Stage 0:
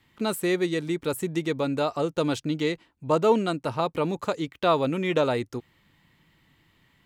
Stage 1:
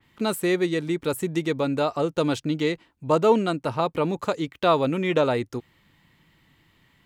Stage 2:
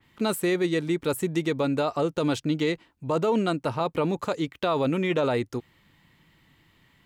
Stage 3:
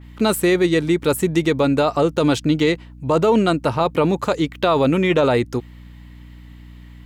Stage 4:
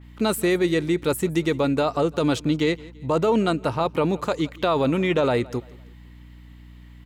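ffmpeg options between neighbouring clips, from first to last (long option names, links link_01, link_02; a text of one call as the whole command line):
ffmpeg -i in.wav -af "adynamicequalizer=threshold=0.00891:dfrequency=3400:dqfactor=0.7:tfrequency=3400:tqfactor=0.7:attack=5:release=100:ratio=0.375:range=2:mode=cutabove:tftype=highshelf,volume=2dB" out.wav
ffmpeg -i in.wav -af "alimiter=limit=-16dB:level=0:latency=1:release=12" out.wav
ffmpeg -i in.wav -af "aeval=exprs='val(0)+0.00447*(sin(2*PI*60*n/s)+sin(2*PI*2*60*n/s)/2+sin(2*PI*3*60*n/s)/3+sin(2*PI*4*60*n/s)/4+sin(2*PI*5*60*n/s)/5)':channel_layout=same,volume=8dB" out.wav
ffmpeg -i in.wav -af "aecho=1:1:169|338|507:0.0794|0.0318|0.0127,volume=-4.5dB" out.wav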